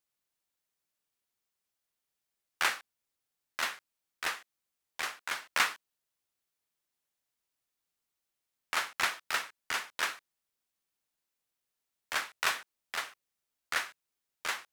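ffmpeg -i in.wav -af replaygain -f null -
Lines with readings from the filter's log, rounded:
track_gain = +14.1 dB
track_peak = 0.161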